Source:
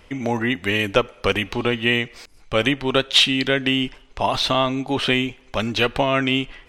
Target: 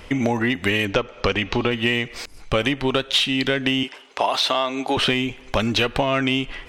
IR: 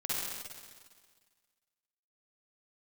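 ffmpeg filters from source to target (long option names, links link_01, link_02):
-filter_complex "[0:a]asplit=2[link_01][link_02];[link_02]asoftclip=type=tanh:threshold=-14dB,volume=-5dB[link_03];[link_01][link_03]amix=inputs=2:normalize=0,asettb=1/sr,asplit=3[link_04][link_05][link_06];[link_04]atrim=end=3.834[link_07];[link_05]atrim=start=3.83:end=4.97,asetpts=PTS-STARTPTS,afade=type=in:duration=0.004:curve=qsin,afade=type=out:start_time=1.136:duration=0.004:curve=qsin,highpass=400[link_08];[link_06]atrim=start=4.966[link_09];[link_07][link_08]acrossfade=duration=0.004:curve1=hsin:curve2=qsin[link_10];[link_10][link_09]acrossfade=duration=0.004:curve1=qsin:curve2=hsin,acompressor=threshold=-22dB:ratio=6,asettb=1/sr,asplit=3[link_11][link_12][link_13];[link_11]atrim=end=0.854[link_14];[link_12]atrim=start=0.85:end=1.71,asetpts=PTS-STARTPTS,afade=type=in:duration=0.004:curve=qsin,afade=type=out:start_time=0.856:duration=0.004:curve=qsin,lowpass=frequency=6600:width=0.5412,lowpass=frequency=6600:width=1.3066[link_15];[link_13]atrim=start=1.706[link_16];[link_14][link_15]acrossfade=duration=0.004:curve1=hsin:curve2=qsin[link_17];[link_17][link_16]acrossfade=duration=0.004:curve1=qsin:curve2=hsin,volume=4.5dB"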